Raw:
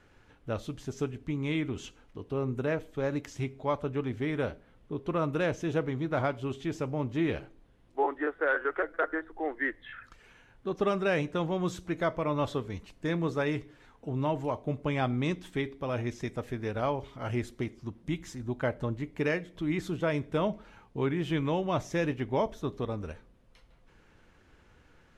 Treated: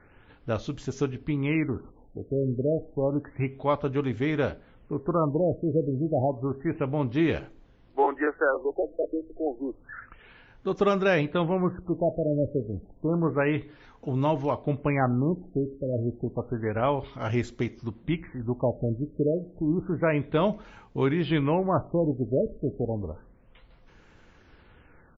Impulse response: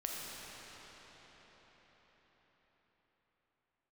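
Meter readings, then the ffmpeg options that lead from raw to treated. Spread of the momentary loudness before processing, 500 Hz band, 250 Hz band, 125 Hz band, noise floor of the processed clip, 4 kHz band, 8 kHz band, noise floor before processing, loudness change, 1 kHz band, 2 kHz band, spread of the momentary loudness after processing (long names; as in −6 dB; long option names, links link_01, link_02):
8 LU, +5.0 dB, +5.0 dB, +5.0 dB, −57 dBFS, +0.5 dB, can't be measured, −61 dBFS, +4.5 dB, +3.5 dB, 0.0 dB, 9 LU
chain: -af "aresample=32000,aresample=44100,afftfilt=real='re*lt(b*sr/1024,630*pow(7600/630,0.5+0.5*sin(2*PI*0.3*pts/sr)))':imag='im*lt(b*sr/1024,630*pow(7600/630,0.5+0.5*sin(2*PI*0.3*pts/sr)))':win_size=1024:overlap=0.75,volume=5dB"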